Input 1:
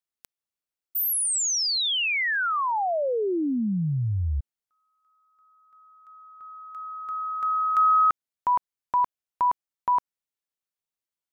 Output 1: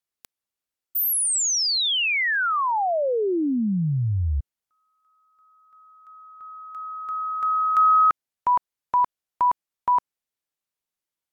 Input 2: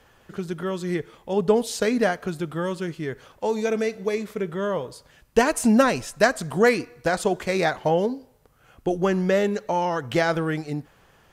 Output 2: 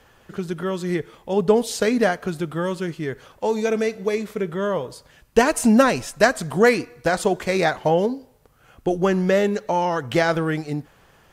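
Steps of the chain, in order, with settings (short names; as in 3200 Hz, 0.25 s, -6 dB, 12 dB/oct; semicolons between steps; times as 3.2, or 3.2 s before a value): gain +2.5 dB; AAC 96 kbps 48000 Hz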